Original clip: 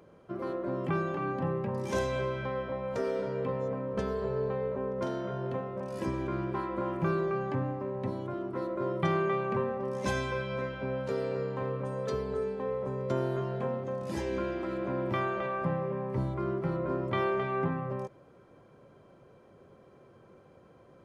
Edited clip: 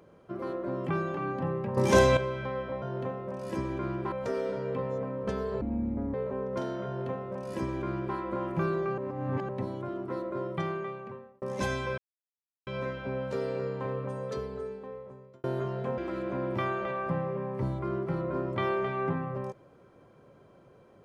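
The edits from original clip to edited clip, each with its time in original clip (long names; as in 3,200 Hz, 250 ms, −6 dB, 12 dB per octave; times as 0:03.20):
0:01.77–0:02.17: clip gain +10 dB
0:04.31–0:04.59: play speed 53%
0:05.31–0:06.61: duplicate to 0:02.82
0:07.43–0:07.94: reverse
0:08.59–0:09.87: fade out linear
0:10.43: splice in silence 0.69 s
0:11.78–0:13.20: fade out
0:13.74–0:14.53: remove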